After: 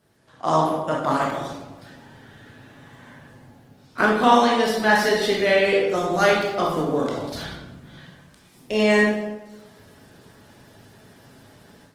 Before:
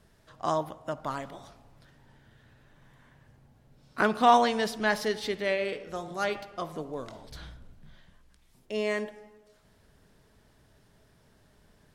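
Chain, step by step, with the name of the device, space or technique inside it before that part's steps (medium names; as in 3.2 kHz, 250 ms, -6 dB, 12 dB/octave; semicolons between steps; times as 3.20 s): far-field microphone of a smart speaker (reverberation RT60 0.85 s, pre-delay 22 ms, DRR -2.5 dB; high-pass 130 Hz 12 dB/octave; level rider gain up to 11 dB; trim -1 dB; Opus 20 kbps 48 kHz)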